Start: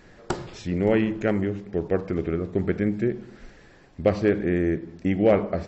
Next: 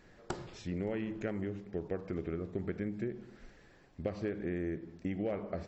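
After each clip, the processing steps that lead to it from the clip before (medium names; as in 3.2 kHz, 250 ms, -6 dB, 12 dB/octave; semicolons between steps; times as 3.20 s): compression 6:1, threshold -23 dBFS, peak gain reduction 9.5 dB; trim -9 dB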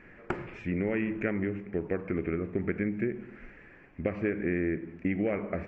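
FFT filter 130 Hz 0 dB, 260 Hz +4 dB, 790 Hz -1 dB, 2.4 kHz +10 dB, 3.8 kHz -17 dB; trim +4 dB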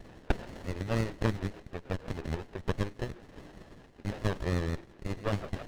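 vibrato 3.4 Hz 58 cents; LFO high-pass sine 6.2 Hz 760–2400 Hz; sliding maximum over 33 samples; trim +5 dB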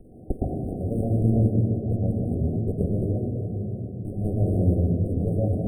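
brick-wall FIR band-stop 770–8300 Hz; reverberation RT60 3.4 s, pre-delay 114 ms, DRR 2 dB; trim -2 dB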